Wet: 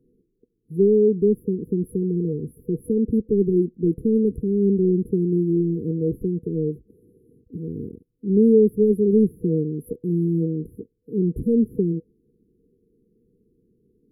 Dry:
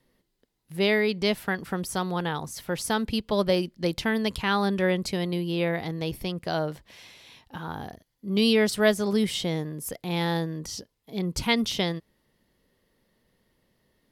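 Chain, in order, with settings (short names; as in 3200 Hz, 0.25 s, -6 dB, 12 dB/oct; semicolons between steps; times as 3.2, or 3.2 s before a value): tilt shelf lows +8 dB, about 930 Hz; overdrive pedal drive 16 dB, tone 1500 Hz, clips at -4.5 dBFS; FFT band-reject 490–10000 Hz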